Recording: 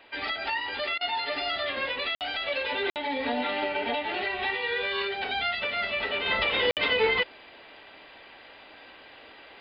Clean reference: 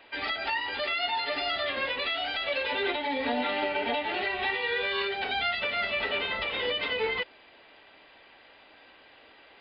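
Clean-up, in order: interpolate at 2.15/2.90/6.71 s, 58 ms; interpolate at 0.98 s, 28 ms; trim 0 dB, from 6.26 s -5.5 dB

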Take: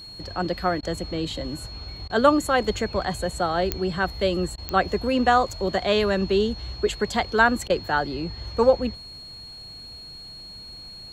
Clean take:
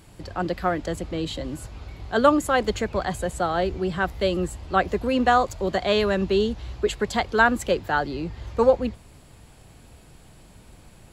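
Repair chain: de-click; band-stop 4.3 kHz, Q 30; interpolate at 0.81/2.08/4.56/7.68 s, 17 ms

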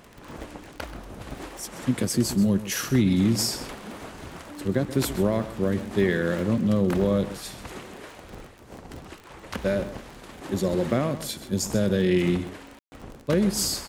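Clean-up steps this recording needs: de-click; room tone fill 12.79–12.92 s; inverse comb 131 ms -14 dB

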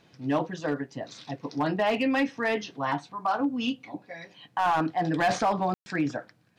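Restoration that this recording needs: clip repair -18.5 dBFS; room tone fill 5.74–5.86 s

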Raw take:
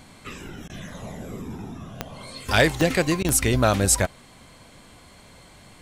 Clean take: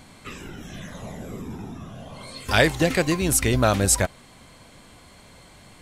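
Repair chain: clip repair -7.5 dBFS; de-click; interpolate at 0.68/3.23 s, 15 ms

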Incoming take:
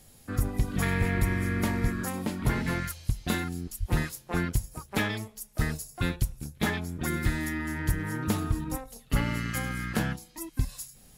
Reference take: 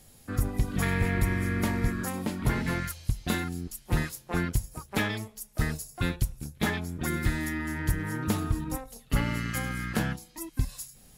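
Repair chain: 3.79–3.91 s: high-pass 140 Hz 24 dB/octave

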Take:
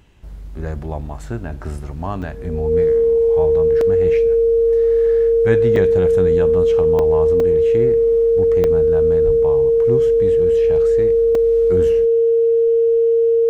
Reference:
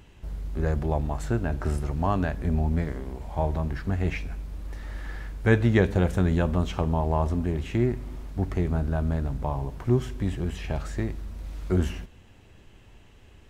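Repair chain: band-stop 460 Hz, Q 30; de-plosive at 9.25 s; interpolate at 2.22/3.81/5.76/6.99/7.40/8.64/11.35 s, 2.6 ms

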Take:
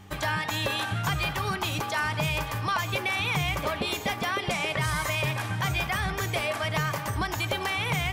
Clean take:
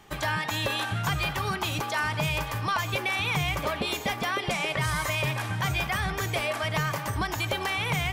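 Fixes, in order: de-hum 96.5 Hz, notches 3

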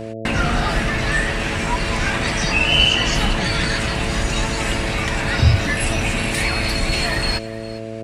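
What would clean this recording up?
de-hum 111.3 Hz, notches 6; inverse comb 407 ms -18 dB

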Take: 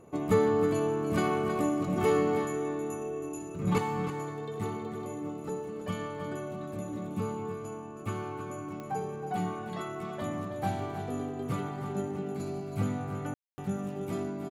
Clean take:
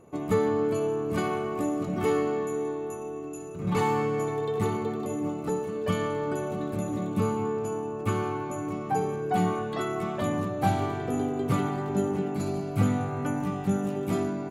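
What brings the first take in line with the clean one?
de-click; room tone fill 13.34–13.58 s; inverse comb 320 ms -9.5 dB; trim 0 dB, from 3.78 s +7 dB

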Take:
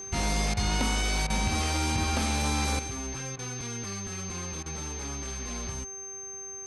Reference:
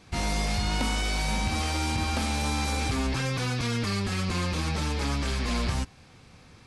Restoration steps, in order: de-hum 391.6 Hz, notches 7; band-stop 6.3 kHz, Q 30; interpolate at 0.54/1.27/3.36/4.63 s, 28 ms; trim 0 dB, from 2.79 s +9.5 dB

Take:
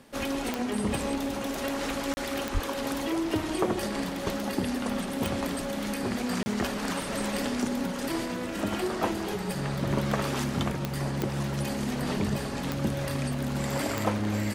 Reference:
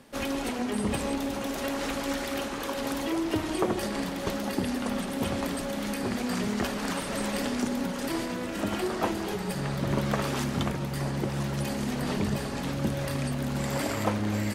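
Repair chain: de-click; 2.53–2.65 s: high-pass 140 Hz 24 dB/octave; interpolate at 2.14/6.43 s, 30 ms

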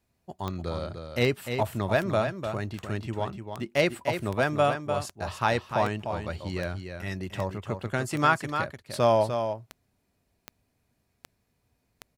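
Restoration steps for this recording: de-click; inverse comb 299 ms -7.5 dB

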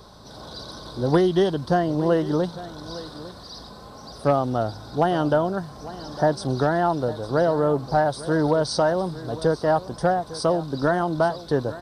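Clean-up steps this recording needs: de-hum 54.4 Hz, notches 4; inverse comb 854 ms -16.5 dB

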